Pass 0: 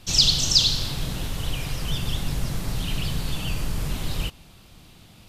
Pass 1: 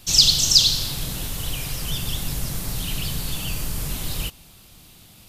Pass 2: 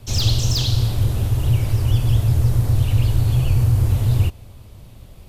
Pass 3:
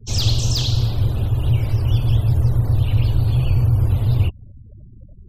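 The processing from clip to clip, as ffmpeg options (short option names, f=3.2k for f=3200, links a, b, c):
-af "aemphasis=mode=production:type=50kf,volume=-1.5dB"
-af "afreqshift=-130,asoftclip=type=tanh:threshold=-11dB,tiltshelf=f=1.2k:g=10,volume=1.5dB"
-filter_complex "[0:a]afftfilt=real='re*gte(hypot(re,im),0.0126)':imag='im*gte(hypot(re,im),0.0126)':win_size=1024:overlap=0.75,acrossover=split=400|820|6700[a][b][c][d];[b]acompressor=mode=upward:threshold=-53dB:ratio=2.5[e];[a][e][c][d]amix=inputs=4:normalize=0"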